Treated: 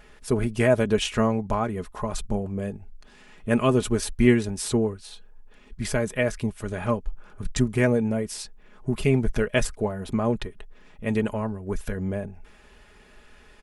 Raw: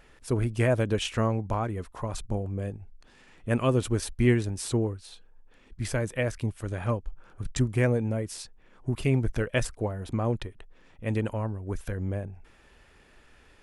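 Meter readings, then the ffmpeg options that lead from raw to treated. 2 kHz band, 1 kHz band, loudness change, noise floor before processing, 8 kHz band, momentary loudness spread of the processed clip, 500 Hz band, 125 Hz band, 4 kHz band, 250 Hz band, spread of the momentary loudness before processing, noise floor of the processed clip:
+4.5 dB, +4.5 dB, +3.5 dB, -57 dBFS, +4.5 dB, 13 LU, +5.0 dB, -0.5 dB, +4.0 dB, +5.5 dB, 12 LU, -52 dBFS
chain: -af "aecho=1:1:4.8:0.5,volume=1.5"

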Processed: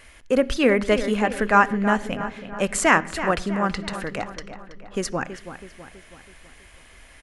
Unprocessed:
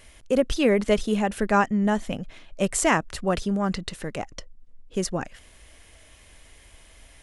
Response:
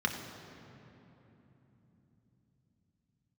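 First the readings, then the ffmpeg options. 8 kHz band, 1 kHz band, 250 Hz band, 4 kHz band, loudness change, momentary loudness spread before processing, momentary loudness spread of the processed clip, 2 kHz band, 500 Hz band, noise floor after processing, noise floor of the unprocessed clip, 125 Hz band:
0.0 dB, +5.0 dB, +0.5 dB, +2.0 dB, +2.5 dB, 14 LU, 18 LU, +7.0 dB, +2.0 dB, -50 dBFS, -52 dBFS, -1.0 dB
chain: -filter_complex "[0:a]equalizer=f=1800:w=0.81:g=6.5,asplit=2[s0][s1];[s1]adelay=326,lowpass=f=3600:p=1,volume=0.282,asplit=2[s2][s3];[s3]adelay=326,lowpass=f=3600:p=1,volume=0.53,asplit=2[s4][s5];[s5]adelay=326,lowpass=f=3600:p=1,volume=0.53,asplit=2[s6][s7];[s7]adelay=326,lowpass=f=3600:p=1,volume=0.53,asplit=2[s8][s9];[s9]adelay=326,lowpass=f=3600:p=1,volume=0.53,asplit=2[s10][s11];[s11]adelay=326,lowpass=f=3600:p=1,volume=0.53[s12];[s0][s2][s4][s6][s8][s10][s12]amix=inputs=7:normalize=0,asplit=2[s13][s14];[1:a]atrim=start_sample=2205,afade=t=out:st=0.21:d=0.01,atrim=end_sample=9702[s15];[s14][s15]afir=irnorm=-1:irlink=0,volume=0.106[s16];[s13][s16]amix=inputs=2:normalize=0"

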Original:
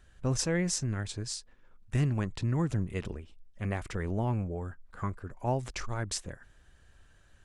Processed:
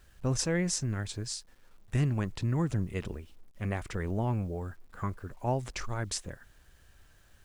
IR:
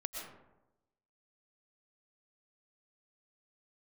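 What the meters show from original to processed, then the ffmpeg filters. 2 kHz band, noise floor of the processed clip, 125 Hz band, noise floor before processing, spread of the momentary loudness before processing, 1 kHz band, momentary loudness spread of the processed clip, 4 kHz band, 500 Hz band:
0.0 dB, -61 dBFS, 0.0 dB, -61 dBFS, 10 LU, 0.0 dB, 10 LU, 0.0 dB, 0.0 dB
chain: -af "acrusher=bits=10:mix=0:aa=0.000001"

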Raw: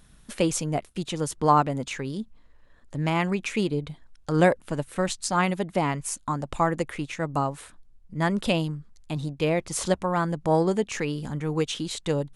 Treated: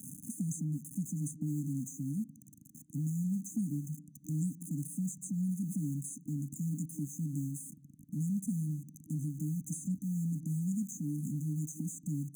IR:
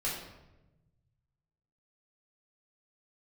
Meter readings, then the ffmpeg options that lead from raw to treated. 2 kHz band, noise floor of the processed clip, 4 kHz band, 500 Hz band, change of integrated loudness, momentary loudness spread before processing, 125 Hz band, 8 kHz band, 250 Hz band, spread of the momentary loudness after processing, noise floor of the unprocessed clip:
under -40 dB, -58 dBFS, under -40 dB, under -35 dB, -10.5 dB, 11 LU, -5.0 dB, -7.5 dB, -6.5 dB, 8 LU, -55 dBFS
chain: -filter_complex "[0:a]aeval=exprs='val(0)+0.5*0.02*sgn(val(0))':c=same,asplit=2[s0][s1];[1:a]atrim=start_sample=2205,lowpass=4500,adelay=17[s2];[s1][s2]afir=irnorm=-1:irlink=0,volume=0.0531[s3];[s0][s3]amix=inputs=2:normalize=0,afftfilt=real='re*(1-between(b*sr/4096,310,6100))':imag='im*(1-between(b*sr/4096,310,6100))':win_size=4096:overlap=0.75,acrossover=split=220|580[s4][s5][s6];[s4]acompressor=threshold=0.0251:ratio=4[s7];[s5]acompressor=threshold=0.00708:ratio=4[s8];[s6]acompressor=threshold=0.00708:ratio=4[s9];[s7][s8][s9]amix=inputs=3:normalize=0,highpass=f=140:w=0.5412,highpass=f=140:w=1.3066,volume=0.891"

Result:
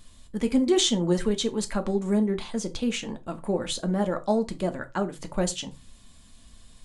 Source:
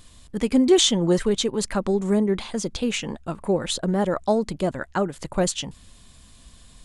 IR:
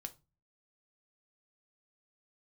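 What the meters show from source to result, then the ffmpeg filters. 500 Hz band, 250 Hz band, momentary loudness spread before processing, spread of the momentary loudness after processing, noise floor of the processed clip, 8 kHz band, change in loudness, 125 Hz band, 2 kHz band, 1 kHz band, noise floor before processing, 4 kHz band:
-4.5 dB, -3.0 dB, 11 LU, 10 LU, -52 dBFS, -4.0 dB, -3.5 dB, -3.0 dB, -4.5 dB, -4.0 dB, -51 dBFS, -4.0 dB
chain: -filter_complex "[1:a]atrim=start_sample=2205,afade=t=out:st=0.18:d=0.01,atrim=end_sample=8379[s0];[0:a][s0]afir=irnorm=-1:irlink=0"

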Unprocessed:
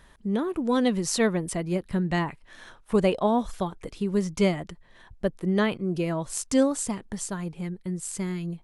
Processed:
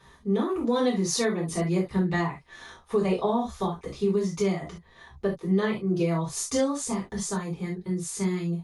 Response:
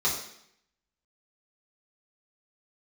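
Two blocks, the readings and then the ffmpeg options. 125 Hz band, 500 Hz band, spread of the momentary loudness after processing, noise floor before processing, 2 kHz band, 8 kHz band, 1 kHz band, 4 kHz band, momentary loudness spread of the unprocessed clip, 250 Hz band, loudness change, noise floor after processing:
+1.0 dB, 0.0 dB, 7 LU, -55 dBFS, -1.5 dB, +0.5 dB, -0.5 dB, -0.5 dB, 10 LU, -1.0 dB, -0.5 dB, -56 dBFS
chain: -filter_complex "[1:a]atrim=start_sample=2205,atrim=end_sample=3528,asetrate=42777,aresample=44100[s0];[0:a][s0]afir=irnorm=-1:irlink=0,alimiter=limit=0.376:level=0:latency=1:release=414,volume=0.447"

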